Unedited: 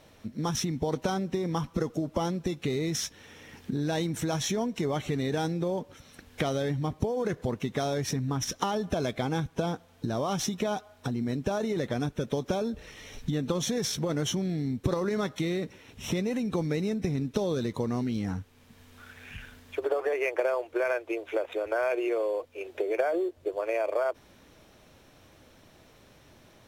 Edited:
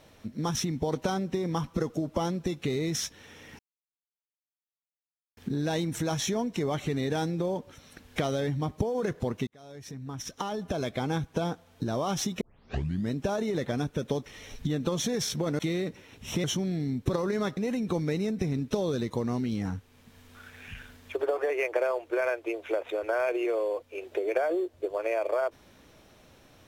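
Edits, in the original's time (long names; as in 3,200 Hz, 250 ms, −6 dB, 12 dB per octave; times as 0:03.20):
0:03.59: splice in silence 1.78 s
0:07.69–0:09.34: fade in
0:10.63: tape start 0.70 s
0:12.48–0:12.89: remove
0:15.35–0:16.20: move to 0:14.22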